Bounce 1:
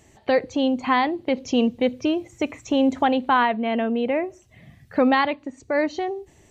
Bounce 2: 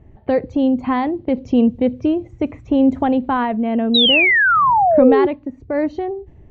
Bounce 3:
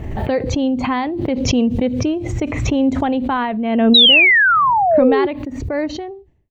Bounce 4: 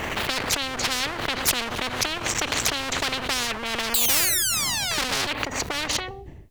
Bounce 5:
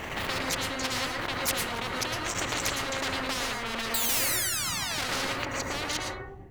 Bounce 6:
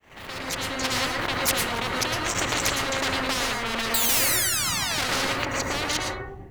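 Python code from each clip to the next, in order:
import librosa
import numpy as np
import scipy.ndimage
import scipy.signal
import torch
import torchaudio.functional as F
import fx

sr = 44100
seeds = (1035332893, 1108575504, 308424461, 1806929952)

y1 = fx.tilt_eq(x, sr, slope=-4.0)
y1 = fx.env_lowpass(y1, sr, base_hz=2200.0, full_db=-12.5)
y1 = fx.spec_paint(y1, sr, seeds[0], shape='fall', start_s=3.94, length_s=1.33, low_hz=350.0, high_hz=4000.0, level_db=-12.0)
y1 = F.gain(torch.from_numpy(y1), -1.5).numpy()
y2 = fx.fade_out_tail(y1, sr, length_s=0.69)
y2 = fx.high_shelf(y2, sr, hz=2000.0, db=10.0)
y2 = fx.pre_swell(y2, sr, db_per_s=38.0)
y2 = F.gain(torch.from_numpy(y2), -2.5).numpy()
y3 = fx.clip_asym(y2, sr, top_db=-25.0, bottom_db=-5.0)
y3 = fx.spectral_comp(y3, sr, ratio=10.0)
y4 = fx.rev_plate(y3, sr, seeds[1], rt60_s=0.6, hf_ratio=0.25, predelay_ms=100, drr_db=-1.0)
y4 = F.gain(torch.from_numpy(y4), -7.5).numpy()
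y5 = fx.fade_in_head(y4, sr, length_s=0.94)
y5 = F.gain(torch.from_numpy(y5), 5.0).numpy()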